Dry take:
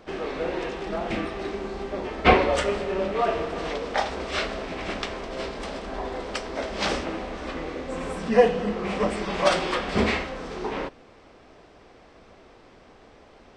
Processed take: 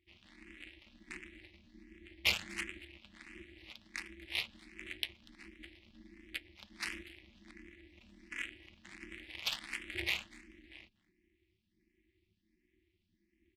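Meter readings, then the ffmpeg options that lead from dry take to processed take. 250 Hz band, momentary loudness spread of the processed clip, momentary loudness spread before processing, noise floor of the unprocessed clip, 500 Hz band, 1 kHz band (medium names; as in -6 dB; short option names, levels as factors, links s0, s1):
-24.0 dB, 21 LU, 13 LU, -52 dBFS, -33.5 dB, -29.5 dB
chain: -filter_complex "[0:a]afftfilt=real='re*(1-between(b*sr/4096,110,1900))':imag='im*(1-between(b*sr/4096,110,1900))':win_size=4096:overlap=0.75,highpass=f=57:p=1,tremolo=f=270:d=0.947,equalizer=f=1500:w=1.2:g=-2.5,acrossover=split=4400[s0][s1];[s0]asoftclip=type=tanh:threshold=0.0631[s2];[s1]acompressor=threshold=0.00141:ratio=8[s3];[s2][s3]amix=inputs=2:normalize=0,bass=f=250:g=-15,treble=f=4000:g=10,adynamicsmooth=sensitivity=4:basefreq=700,asplit=2[s4][s5];[s5]aecho=0:1:241:0.0841[s6];[s4][s6]amix=inputs=2:normalize=0,aresample=32000,aresample=44100,asplit=2[s7][s8];[s8]afreqshift=1.4[s9];[s7][s9]amix=inputs=2:normalize=1,volume=2"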